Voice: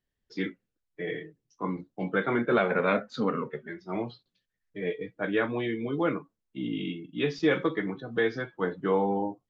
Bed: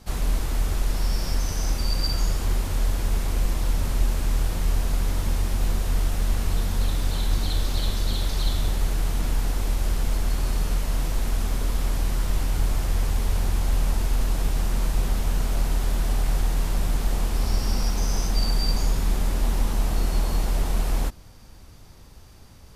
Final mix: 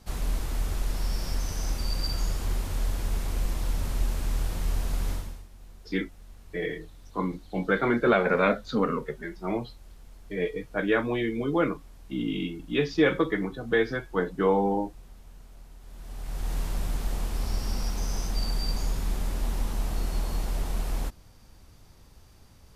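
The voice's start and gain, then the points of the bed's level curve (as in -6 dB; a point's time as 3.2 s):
5.55 s, +2.5 dB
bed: 5.13 s -5 dB
5.48 s -25.5 dB
15.79 s -25.5 dB
16.53 s -6 dB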